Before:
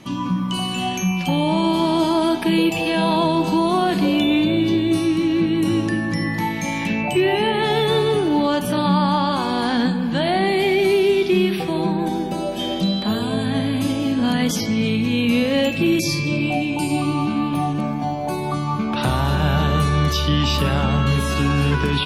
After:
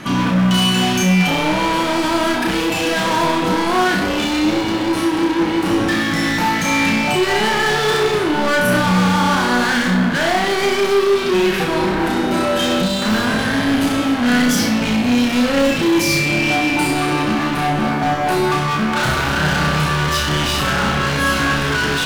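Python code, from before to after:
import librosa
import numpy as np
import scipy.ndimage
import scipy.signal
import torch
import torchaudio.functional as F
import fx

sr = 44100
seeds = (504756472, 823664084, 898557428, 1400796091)

p1 = fx.peak_eq(x, sr, hz=1500.0, db=13.0, octaves=0.62)
p2 = fx.rider(p1, sr, range_db=10, speed_s=0.5)
p3 = p1 + (p2 * 10.0 ** (0.0 / 20.0))
p4 = np.clip(p3, -10.0 ** (-17.0 / 20.0), 10.0 ** (-17.0 / 20.0))
y = fx.room_flutter(p4, sr, wall_m=5.6, rt60_s=0.46)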